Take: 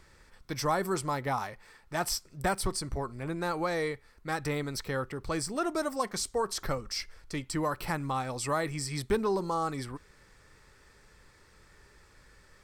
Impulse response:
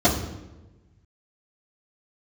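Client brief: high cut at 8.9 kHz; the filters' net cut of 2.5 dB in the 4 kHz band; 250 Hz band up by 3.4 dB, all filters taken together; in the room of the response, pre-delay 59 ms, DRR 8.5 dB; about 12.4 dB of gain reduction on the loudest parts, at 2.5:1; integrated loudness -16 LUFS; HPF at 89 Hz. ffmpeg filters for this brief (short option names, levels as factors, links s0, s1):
-filter_complex "[0:a]highpass=89,lowpass=8900,equalizer=f=250:t=o:g=5,equalizer=f=4000:t=o:g=-3,acompressor=threshold=0.01:ratio=2.5,asplit=2[s0][s1];[1:a]atrim=start_sample=2205,adelay=59[s2];[s1][s2]afir=irnorm=-1:irlink=0,volume=0.0422[s3];[s0][s3]amix=inputs=2:normalize=0,volume=14.1"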